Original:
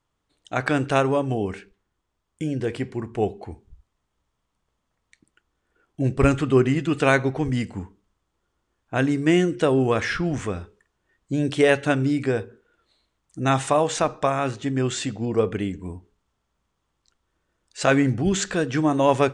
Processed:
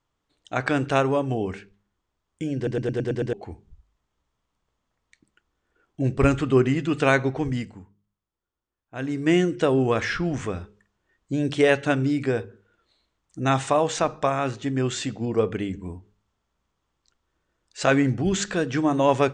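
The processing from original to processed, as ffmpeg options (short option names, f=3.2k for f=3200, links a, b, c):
-filter_complex "[0:a]asplit=10[a][b][c][d][e][f][g][h][i][j];[a]atrim=end=2.672[k];[b]atrim=start=2.558:end=2.672[l];[c]atrim=start=2.558:end=2.672[m];[d]atrim=start=2.558:end=2.672[n];[e]atrim=start=2.558:end=2.672[o];[f]atrim=start=2.558:end=2.672[p];[g]atrim=start=2.558:end=2.672[q];[h]atrim=start=3.328:end=7.83,asetpts=PTS-STARTPTS,afade=t=out:st=4.122:d=0.38:silence=0.223872[r];[i]atrim=start=7.83:end=8.93,asetpts=PTS-STARTPTS,volume=-13dB[s];[j]atrim=start=8.93,asetpts=PTS-STARTPTS,afade=t=in:d=0.38:silence=0.223872[t];[k][l]acrossfade=d=0.004:c1=hsin:c2=hsin[u];[u][m]acrossfade=d=0.004:c1=hsin:c2=hsin[v];[v][n]acrossfade=d=0.004:c1=hsin:c2=hsin[w];[w][o]acrossfade=d=0.004:c1=hsin:c2=hsin[x];[x][p]acrossfade=d=0.004:c1=hsin:c2=hsin[y];[y][q]acrossfade=d=0.004:c1=hsin:c2=hsin[z];[r][s][t]concat=n=3:v=0:a=1[aa];[z][aa]acrossfade=d=0.004:c1=hsin:c2=hsin,lowpass=f=8.2k:w=0.5412,lowpass=f=8.2k:w=1.3066,bandreject=f=50.67:t=h:w=4,bandreject=f=101.34:t=h:w=4,bandreject=f=152.01:t=h:w=4,bandreject=f=202.68:t=h:w=4,volume=-1dB"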